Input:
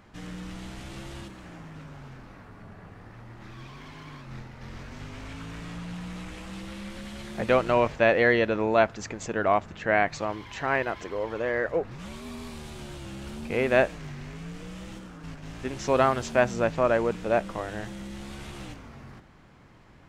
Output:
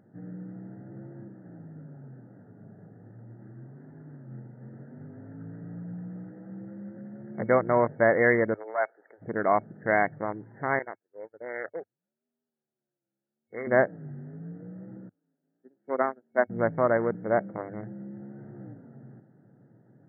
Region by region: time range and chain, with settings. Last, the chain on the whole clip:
8.54–9.22 Bessel high-pass 730 Hz, order 6 + AM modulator 120 Hz, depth 30%
10.79–13.67 CVSD 64 kbps + HPF 1000 Hz 6 dB/oct + gate -38 dBFS, range -35 dB
15.09–16.5 HPF 220 Hz 24 dB/oct + upward expander 2.5:1, over -37 dBFS
whole clip: Wiener smoothing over 41 samples; FFT band-pass 100–2200 Hz

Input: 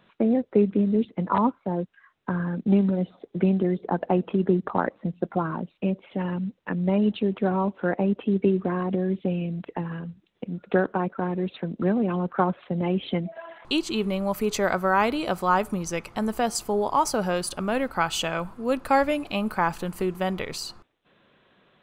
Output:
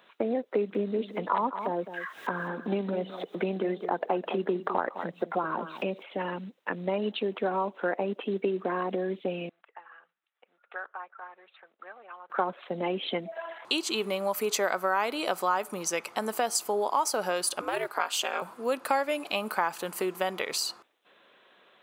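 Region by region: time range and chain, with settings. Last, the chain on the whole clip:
0.54–6.03 upward compressor, threshold -24 dBFS + echo 0.209 s -12.5 dB
9.49–12.3 ladder band-pass 1400 Hz, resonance 35% + notch 1000 Hz, Q 6.6
17.61–18.42 HPF 260 Hz + ring modulator 110 Hz
whole clip: HPF 420 Hz 12 dB/oct; high shelf 6400 Hz +5.5 dB; compressor 2.5:1, threshold -28 dBFS; gain +2.5 dB

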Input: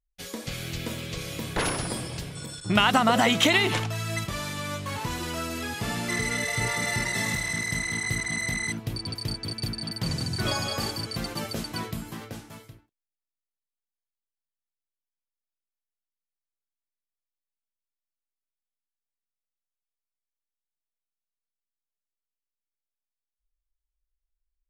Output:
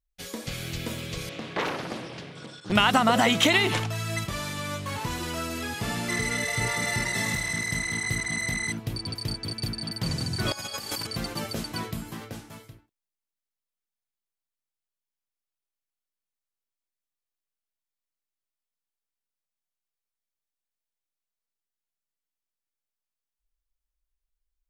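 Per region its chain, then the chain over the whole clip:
1.29–2.72 BPF 200–3700 Hz + Doppler distortion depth 0.94 ms
10.52–11.07 tilt +2 dB/oct + negative-ratio compressor -33 dBFS, ratio -0.5
whole clip: dry

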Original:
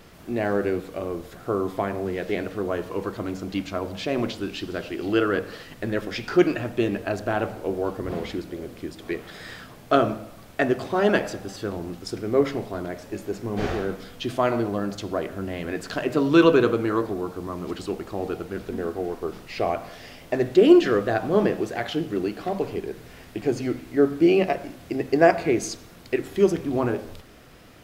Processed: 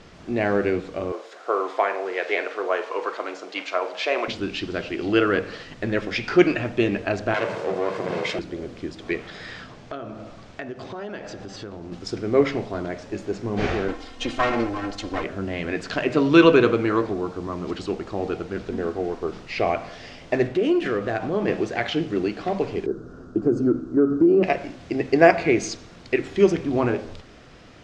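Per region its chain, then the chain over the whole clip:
1.12–4.28 HPF 420 Hz 24 dB/oct + dynamic EQ 1100 Hz, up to +5 dB, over -43 dBFS, Q 0.71 + doubler 46 ms -13.5 dB
7.34–8.39 minimum comb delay 1.9 ms + HPF 140 Hz 24 dB/oct + fast leveller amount 50%
9.27–11.92 LPF 8500 Hz + compressor 4:1, threshold -35 dBFS
13.88–15.24 minimum comb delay 2.8 ms + comb 3.8 ms, depth 61%
20.47–21.48 median filter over 9 samples + compressor 2:1, threshold -26 dBFS
22.86–24.43 EQ curve 100 Hz 0 dB, 340 Hz +8 dB, 890 Hz -9 dB, 1400 Hz +5 dB, 2000 Hz -29 dB, 9500 Hz -1 dB + compressor 4:1, threshold -16 dBFS + careless resampling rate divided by 3×, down filtered, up hold
whole clip: LPF 6900 Hz 24 dB/oct; dynamic EQ 2300 Hz, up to +6 dB, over -45 dBFS, Q 2.3; gain +2 dB

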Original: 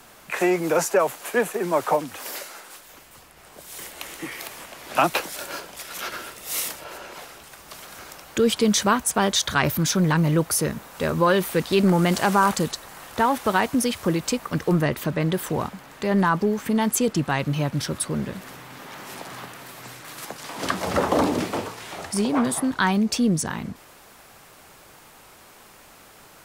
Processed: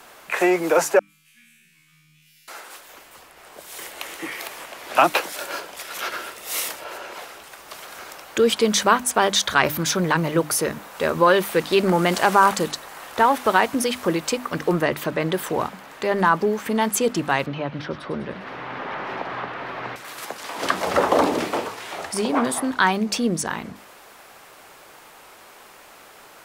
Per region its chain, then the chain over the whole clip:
0.99–2.48 elliptic band-stop 160–2400 Hz, stop band 70 dB + high shelf 3500 Hz -8 dB + resonator 77 Hz, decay 1.3 s, mix 100%
17.46–19.96 air absorption 270 m + thin delay 0.1 s, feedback 54%, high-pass 2200 Hz, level -10.5 dB + three-band squash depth 70%
whole clip: tone controls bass -10 dB, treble -4 dB; notches 50/100/150/200/250/300 Hz; gain +4 dB

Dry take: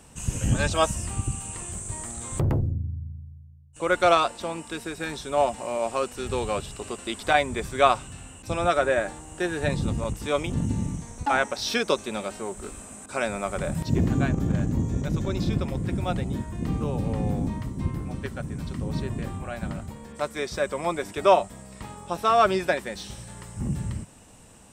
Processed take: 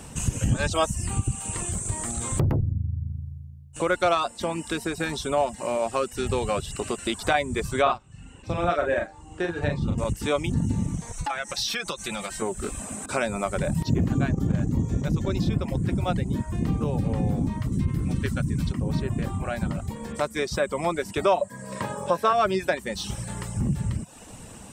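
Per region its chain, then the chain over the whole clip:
7.82–9.98 Bessel low-pass 4100 Hz + doubler 41 ms -3 dB + upward expander, over -33 dBFS
11.12–12.42 compressor 4:1, threshold -29 dBFS + bell 350 Hz -11 dB 2.4 oct + comb 5.9 ms, depth 55%
17.72–18.72 bell 730 Hz -11 dB 1.4 oct + fast leveller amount 50%
21.41–22.33 HPF 100 Hz 24 dB/oct + small resonant body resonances 560/1000/1600 Hz, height 16 dB
whole clip: reverb removal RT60 0.52 s; bell 140 Hz +3 dB 2.1 oct; compressor 2:1, threshold -36 dBFS; gain +8.5 dB

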